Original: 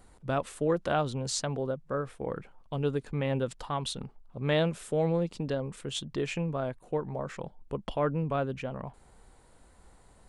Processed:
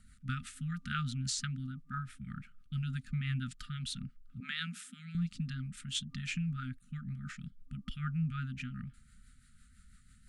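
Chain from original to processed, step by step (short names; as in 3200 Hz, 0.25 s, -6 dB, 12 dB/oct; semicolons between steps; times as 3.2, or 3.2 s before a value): FFT band-reject 260–1200 Hz; 4.4–5.15 steep high-pass 180 Hz 96 dB/oct; rotary speaker horn 6 Hz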